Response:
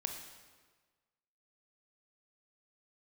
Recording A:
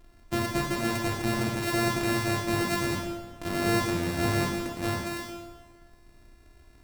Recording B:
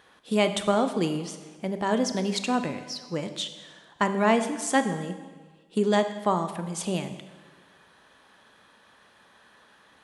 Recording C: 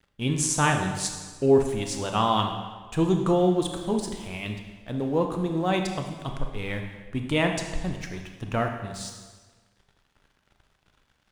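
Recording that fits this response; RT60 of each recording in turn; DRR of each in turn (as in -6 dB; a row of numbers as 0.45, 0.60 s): C; 1.4, 1.4, 1.4 s; -0.5, 8.5, 4.0 dB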